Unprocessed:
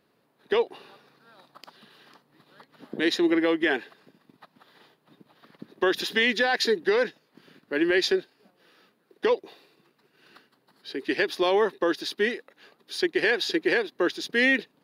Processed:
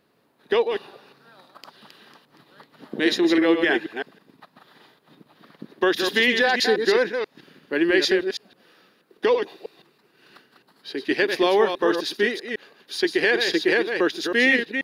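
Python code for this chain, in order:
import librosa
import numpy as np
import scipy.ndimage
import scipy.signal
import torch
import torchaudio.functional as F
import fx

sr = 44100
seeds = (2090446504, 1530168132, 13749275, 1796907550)

y = fx.reverse_delay(x, sr, ms=161, wet_db=-6.0)
y = y * 10.0 ** (3.0 / 20.0)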